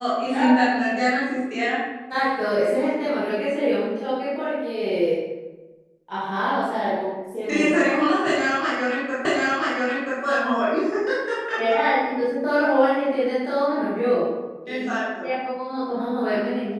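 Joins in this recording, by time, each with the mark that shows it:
9.25 repeat of the last 0.98 s

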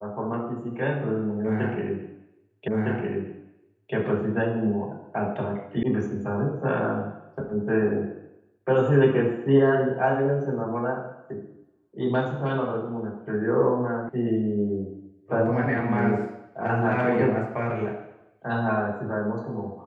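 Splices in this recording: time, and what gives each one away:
2.68 repeat of the last 1.26 s
5.83 sound cut off
14.09 sound cut off

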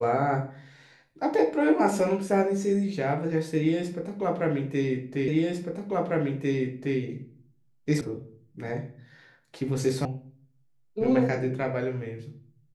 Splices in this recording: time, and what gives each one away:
5.28 repeat of the last 1.7 s
8.01 sound cut off
10.05 sound cut off

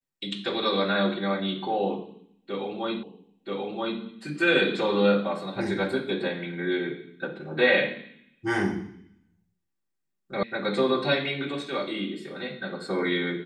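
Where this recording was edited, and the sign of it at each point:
3.03 repeat of the last 0.98 s
10.43 sound cut off

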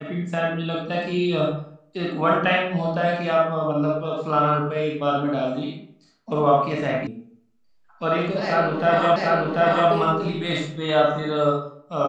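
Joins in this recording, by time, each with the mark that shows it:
7.07 sound cut off
9.16 repeat of the last 0.74 s

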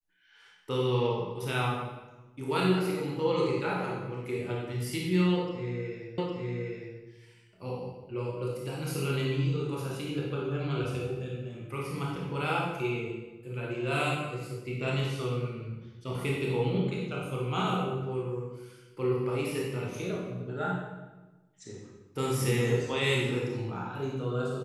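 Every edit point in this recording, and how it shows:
6.18 repeat of the last 0.81 s

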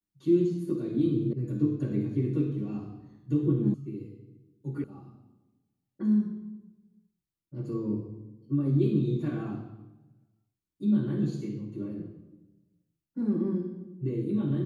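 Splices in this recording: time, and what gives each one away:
1.33 sound cut off
3.74 sound cut off
4.84 sound cut off

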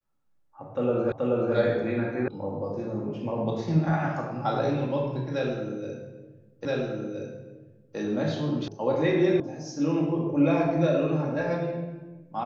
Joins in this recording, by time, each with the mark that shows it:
1.12 repeat of the last 0.43 s
2.28 sound cut off
6.65 repeat of the last 1.32 s
8.68 sound cut off
9.4 sound cut off

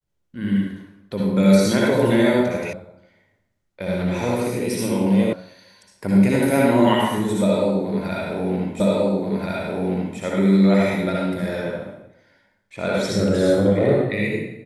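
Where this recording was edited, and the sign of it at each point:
2.73 sound cut off
5.33 sound cut off
8.8 repeat of the last 1.38 s

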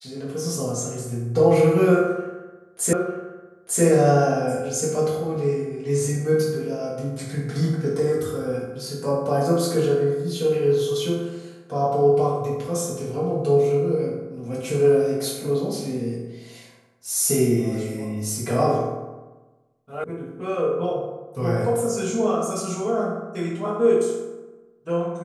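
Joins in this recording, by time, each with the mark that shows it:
2.93 repeat of the last 0.9 s
20.04 sound cut off

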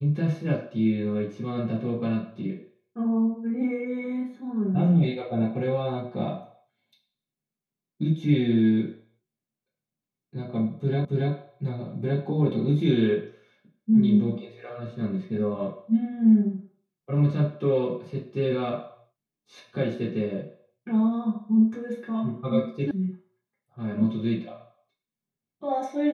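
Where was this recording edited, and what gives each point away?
11.05 repeat of the last 0.28 s
22.91 sound cut off

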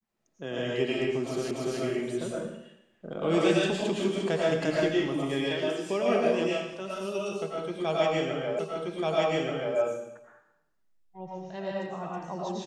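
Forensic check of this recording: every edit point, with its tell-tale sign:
1.51 repeat of the last 0.29 s
8.59 repeat of the last 1.18 s

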